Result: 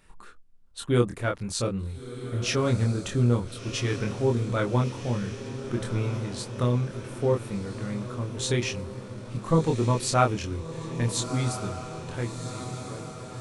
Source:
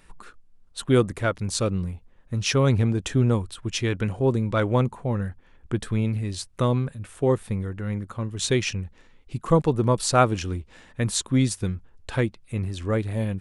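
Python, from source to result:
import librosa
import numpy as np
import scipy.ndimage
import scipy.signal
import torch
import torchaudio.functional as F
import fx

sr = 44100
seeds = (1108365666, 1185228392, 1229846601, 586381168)

y = fx.fade_out_tail(x, sr, length_s=2.43)
y = fx.doubler(y, sr, ms=25.0, db=-3.0)
y = fx.echo_diffused(y, sr, ms=1375, feedback_pct=64, wet_db=-10.5)
y = y * 10.0 ** (-5.0 / 20.0)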